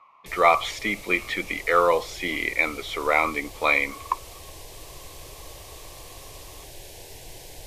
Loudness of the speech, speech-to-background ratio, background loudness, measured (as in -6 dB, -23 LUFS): -23.5 LUFS, 18.5 dB, -42.0 LUFS